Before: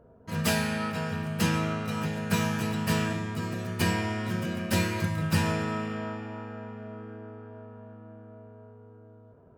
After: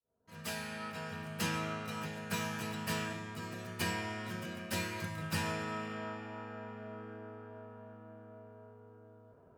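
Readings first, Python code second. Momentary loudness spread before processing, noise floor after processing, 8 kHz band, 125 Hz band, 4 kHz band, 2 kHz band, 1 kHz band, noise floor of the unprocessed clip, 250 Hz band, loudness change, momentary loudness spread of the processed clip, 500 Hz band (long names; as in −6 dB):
19 LU, −61 dBFS, −7.0 dB, −12.5 dB, −7.0 dB, −7.0 dB, −7.0 dB, −54 dBFS, −12.0 dB, −10.0 dB, 18 LU, −9.0 dB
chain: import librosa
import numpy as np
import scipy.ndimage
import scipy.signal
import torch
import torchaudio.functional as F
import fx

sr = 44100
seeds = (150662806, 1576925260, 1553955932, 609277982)

y = fx.fade_in_head(x, sr, length_s=1.76)
y = fx.low_shelf(y, sr, hz=430.0, db=-7.5)
y = fx.rider(y, sr, range_db=5, speed_s=2.0)
y = y * 10.0 ** (-5.5 / 20.0)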